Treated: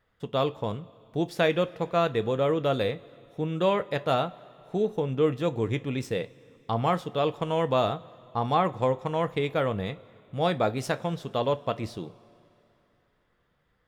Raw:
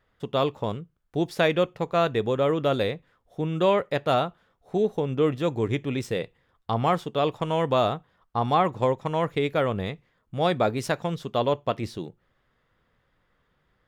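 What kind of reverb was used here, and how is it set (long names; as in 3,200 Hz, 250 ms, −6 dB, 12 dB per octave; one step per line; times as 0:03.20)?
coupled-rooms reverb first 0.2 s, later 3.1 s, from −21 dB, DRR 11.5 dB
level −2.5 dB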